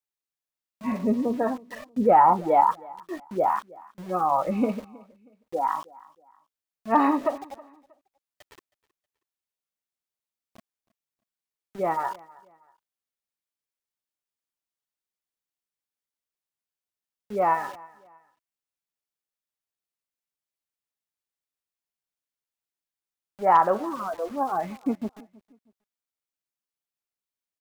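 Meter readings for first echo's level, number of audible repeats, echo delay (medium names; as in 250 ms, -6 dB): -23.0 dB, 2, 318 ms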